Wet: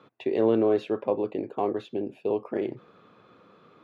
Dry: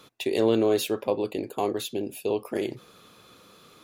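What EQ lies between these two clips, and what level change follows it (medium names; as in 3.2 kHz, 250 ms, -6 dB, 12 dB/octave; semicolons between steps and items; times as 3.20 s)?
high-pass 110 Hz; low-pass 1.7 kHz 12 dB/octave; 0.0 dB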